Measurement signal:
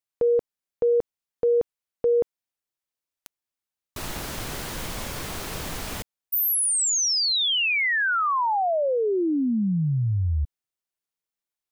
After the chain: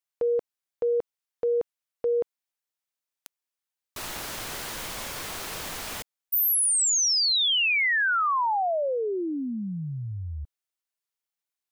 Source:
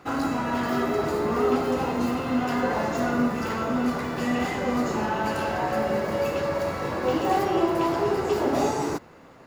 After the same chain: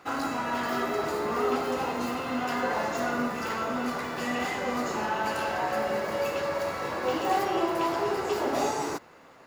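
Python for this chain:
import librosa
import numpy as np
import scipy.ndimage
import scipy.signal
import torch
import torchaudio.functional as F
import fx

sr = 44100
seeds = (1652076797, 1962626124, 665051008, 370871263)

y = fx.low_shelf(x, sr, hz=360.0, db=-11.0)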